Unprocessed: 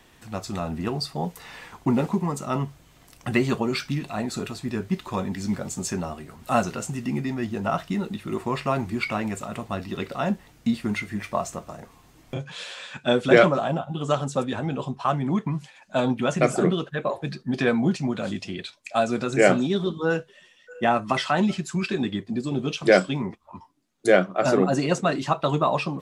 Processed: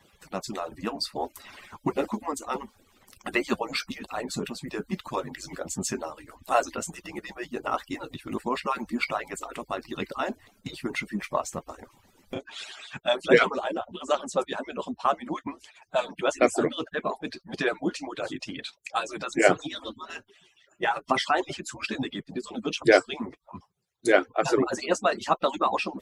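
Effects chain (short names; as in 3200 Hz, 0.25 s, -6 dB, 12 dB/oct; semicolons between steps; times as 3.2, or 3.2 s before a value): median-filter separation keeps percussive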